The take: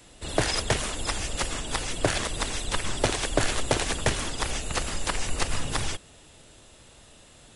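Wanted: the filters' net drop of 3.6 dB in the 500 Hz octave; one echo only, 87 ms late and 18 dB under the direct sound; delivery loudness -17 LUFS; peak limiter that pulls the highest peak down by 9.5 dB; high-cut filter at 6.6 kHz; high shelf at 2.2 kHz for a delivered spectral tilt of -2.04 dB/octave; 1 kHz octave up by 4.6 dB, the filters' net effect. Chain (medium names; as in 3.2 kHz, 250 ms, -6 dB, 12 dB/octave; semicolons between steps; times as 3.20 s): low-pass 6.6 kHz; peaking EQ 500 Hz -7.5 dB; peaking EQ 1 kHz +7 dB; treble shelf 2.2 kHz +4.5 dB; peak limiter -15.5 dBFS; delay 87 ms -18 dB; trim +11.5 dB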